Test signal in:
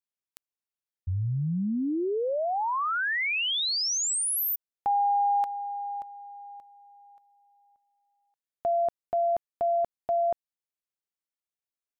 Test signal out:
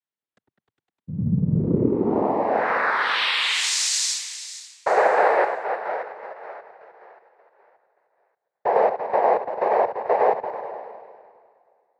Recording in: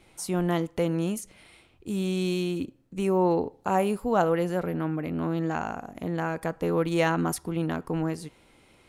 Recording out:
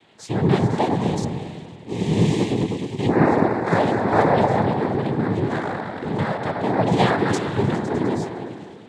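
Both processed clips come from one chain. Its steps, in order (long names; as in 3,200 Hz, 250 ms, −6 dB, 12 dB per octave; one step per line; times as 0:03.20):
echo whose low-pass opens from repeat to repeat 102 ms, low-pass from 750 Hz, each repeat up 1 octave, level −3 dB
low-pass that shuts in the quiet parts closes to 2,700 Hz, open at −22.5 dBFS
cochlear-implant simulation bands 6
level +4.5 dB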